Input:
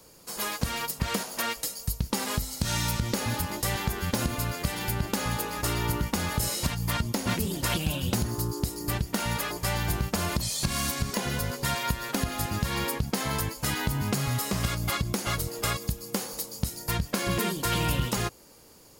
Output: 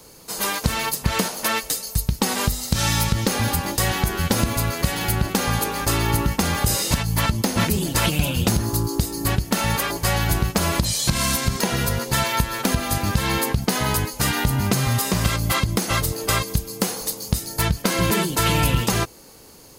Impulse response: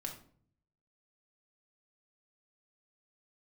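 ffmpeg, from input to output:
-af "asetrate=42336,aresample=44100,volume=2.37"

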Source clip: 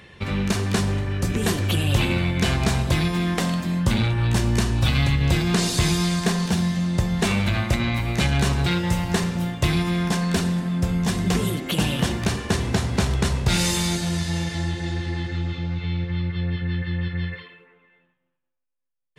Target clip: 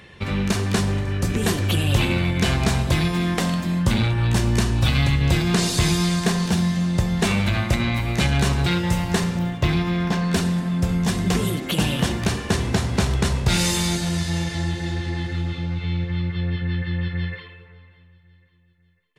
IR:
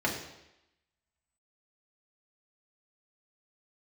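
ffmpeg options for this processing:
-filter_complex "[0:a]asettb=1/sr,asplit=3[s0][s1][s2];[s0]atrim=end=9.394[s3];[s1]atrim=start=9.39:end=10.33,asetpts=PTS-STARTPTS,afade=t=in:d=0.004:c=qsin,afade=t=out:st=0.936:d=0.004:c=qsin,equalizer=f=9900:t=o:w=1.2:g=-14.5[s4];[s2]atrim=start=10.326[s5];[s3][s4]acrossfade=d=0.004:c1=hsin:c2=qsin[s6];[s6][s5]acrossfade=d=0.004:c1=qsin:c2=hsin,aecho=1:1:549|1098|1647:0.0668|0.0327|0.016,volume=1.12"

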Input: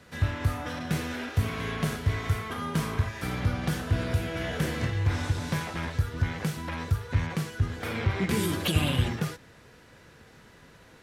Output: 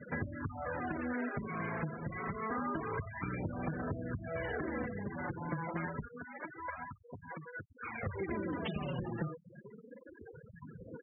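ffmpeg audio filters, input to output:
-af "aeval=exprs='clip(val(0),-1,0.0224)':c=same,flanger=delay=0:depth=5.9:regen=2:speed=0.27:shape=sinusoidal,acompressor=threshold=0.00631:ratio=4,asetnsamples=n=441:p=0,asendcmd='6.08 highpass f 810;8.03 highpass f 140',highpass=f=190:p=1,aeval=exprs='val(0)+0.0002*(sin(2*PI*60*n/s)+sin(2*PI*2*60*n/s)/2+sin(2*PI*3*60*n/s)/3+sin(2*PI*4*60*n/s)/4+sin(2*PI*5*60*n/s)/5)':c=same,lowpass=2200,aecho=1:1:126:0.0944,afftfilt=real='re*gte(hypot(re,im),0.00501)':imag='im*gte(hypot(re,im),0.00501)':win_size=1024:overlap=0.75,volume=3.76"

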